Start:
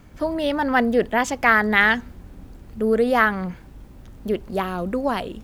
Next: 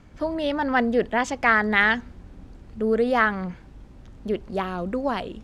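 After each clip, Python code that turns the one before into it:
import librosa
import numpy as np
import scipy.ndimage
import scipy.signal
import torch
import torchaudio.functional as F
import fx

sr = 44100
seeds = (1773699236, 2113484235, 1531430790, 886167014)

y = scipy.signal.sosfilt(scipy.signal.butter(2, 7100.0, 'lowpass', fs=sr, output='sos'), x)
y = y * 10.0 ** (-2.5 / 20.0)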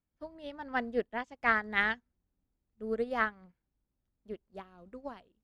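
y = fx.upward_expand(x, sr, threshold_db=-37.0, expansion=2.5)
y = y * 10.0 ** (-7.0 / 20.0)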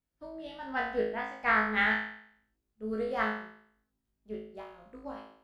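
y = fx.room_flutter(x, sr, wall_m=3.2, rt60_s=0.64)
y = y * 10.0 ** (-2.5 / 20.0)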